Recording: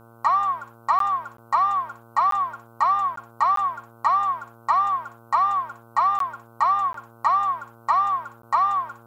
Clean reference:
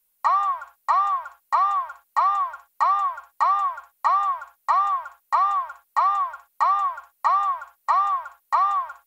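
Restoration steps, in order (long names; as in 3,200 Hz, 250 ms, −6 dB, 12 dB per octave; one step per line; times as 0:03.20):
hum removal 115.6 Hz, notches 13
repair the gap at 0:00.99/0:01.37/0:02.31/0:03.16/0:03.56/0:06.19/0:06.93/0:08.42, 13 ms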